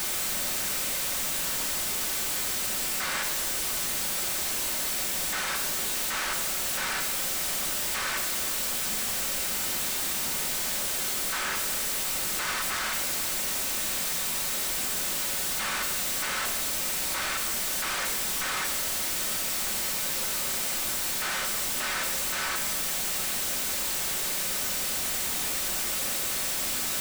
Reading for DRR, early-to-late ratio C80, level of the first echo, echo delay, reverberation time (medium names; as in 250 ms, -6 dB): 2.5 dB, 9.5 dB, no echo, no echo, 1.1 s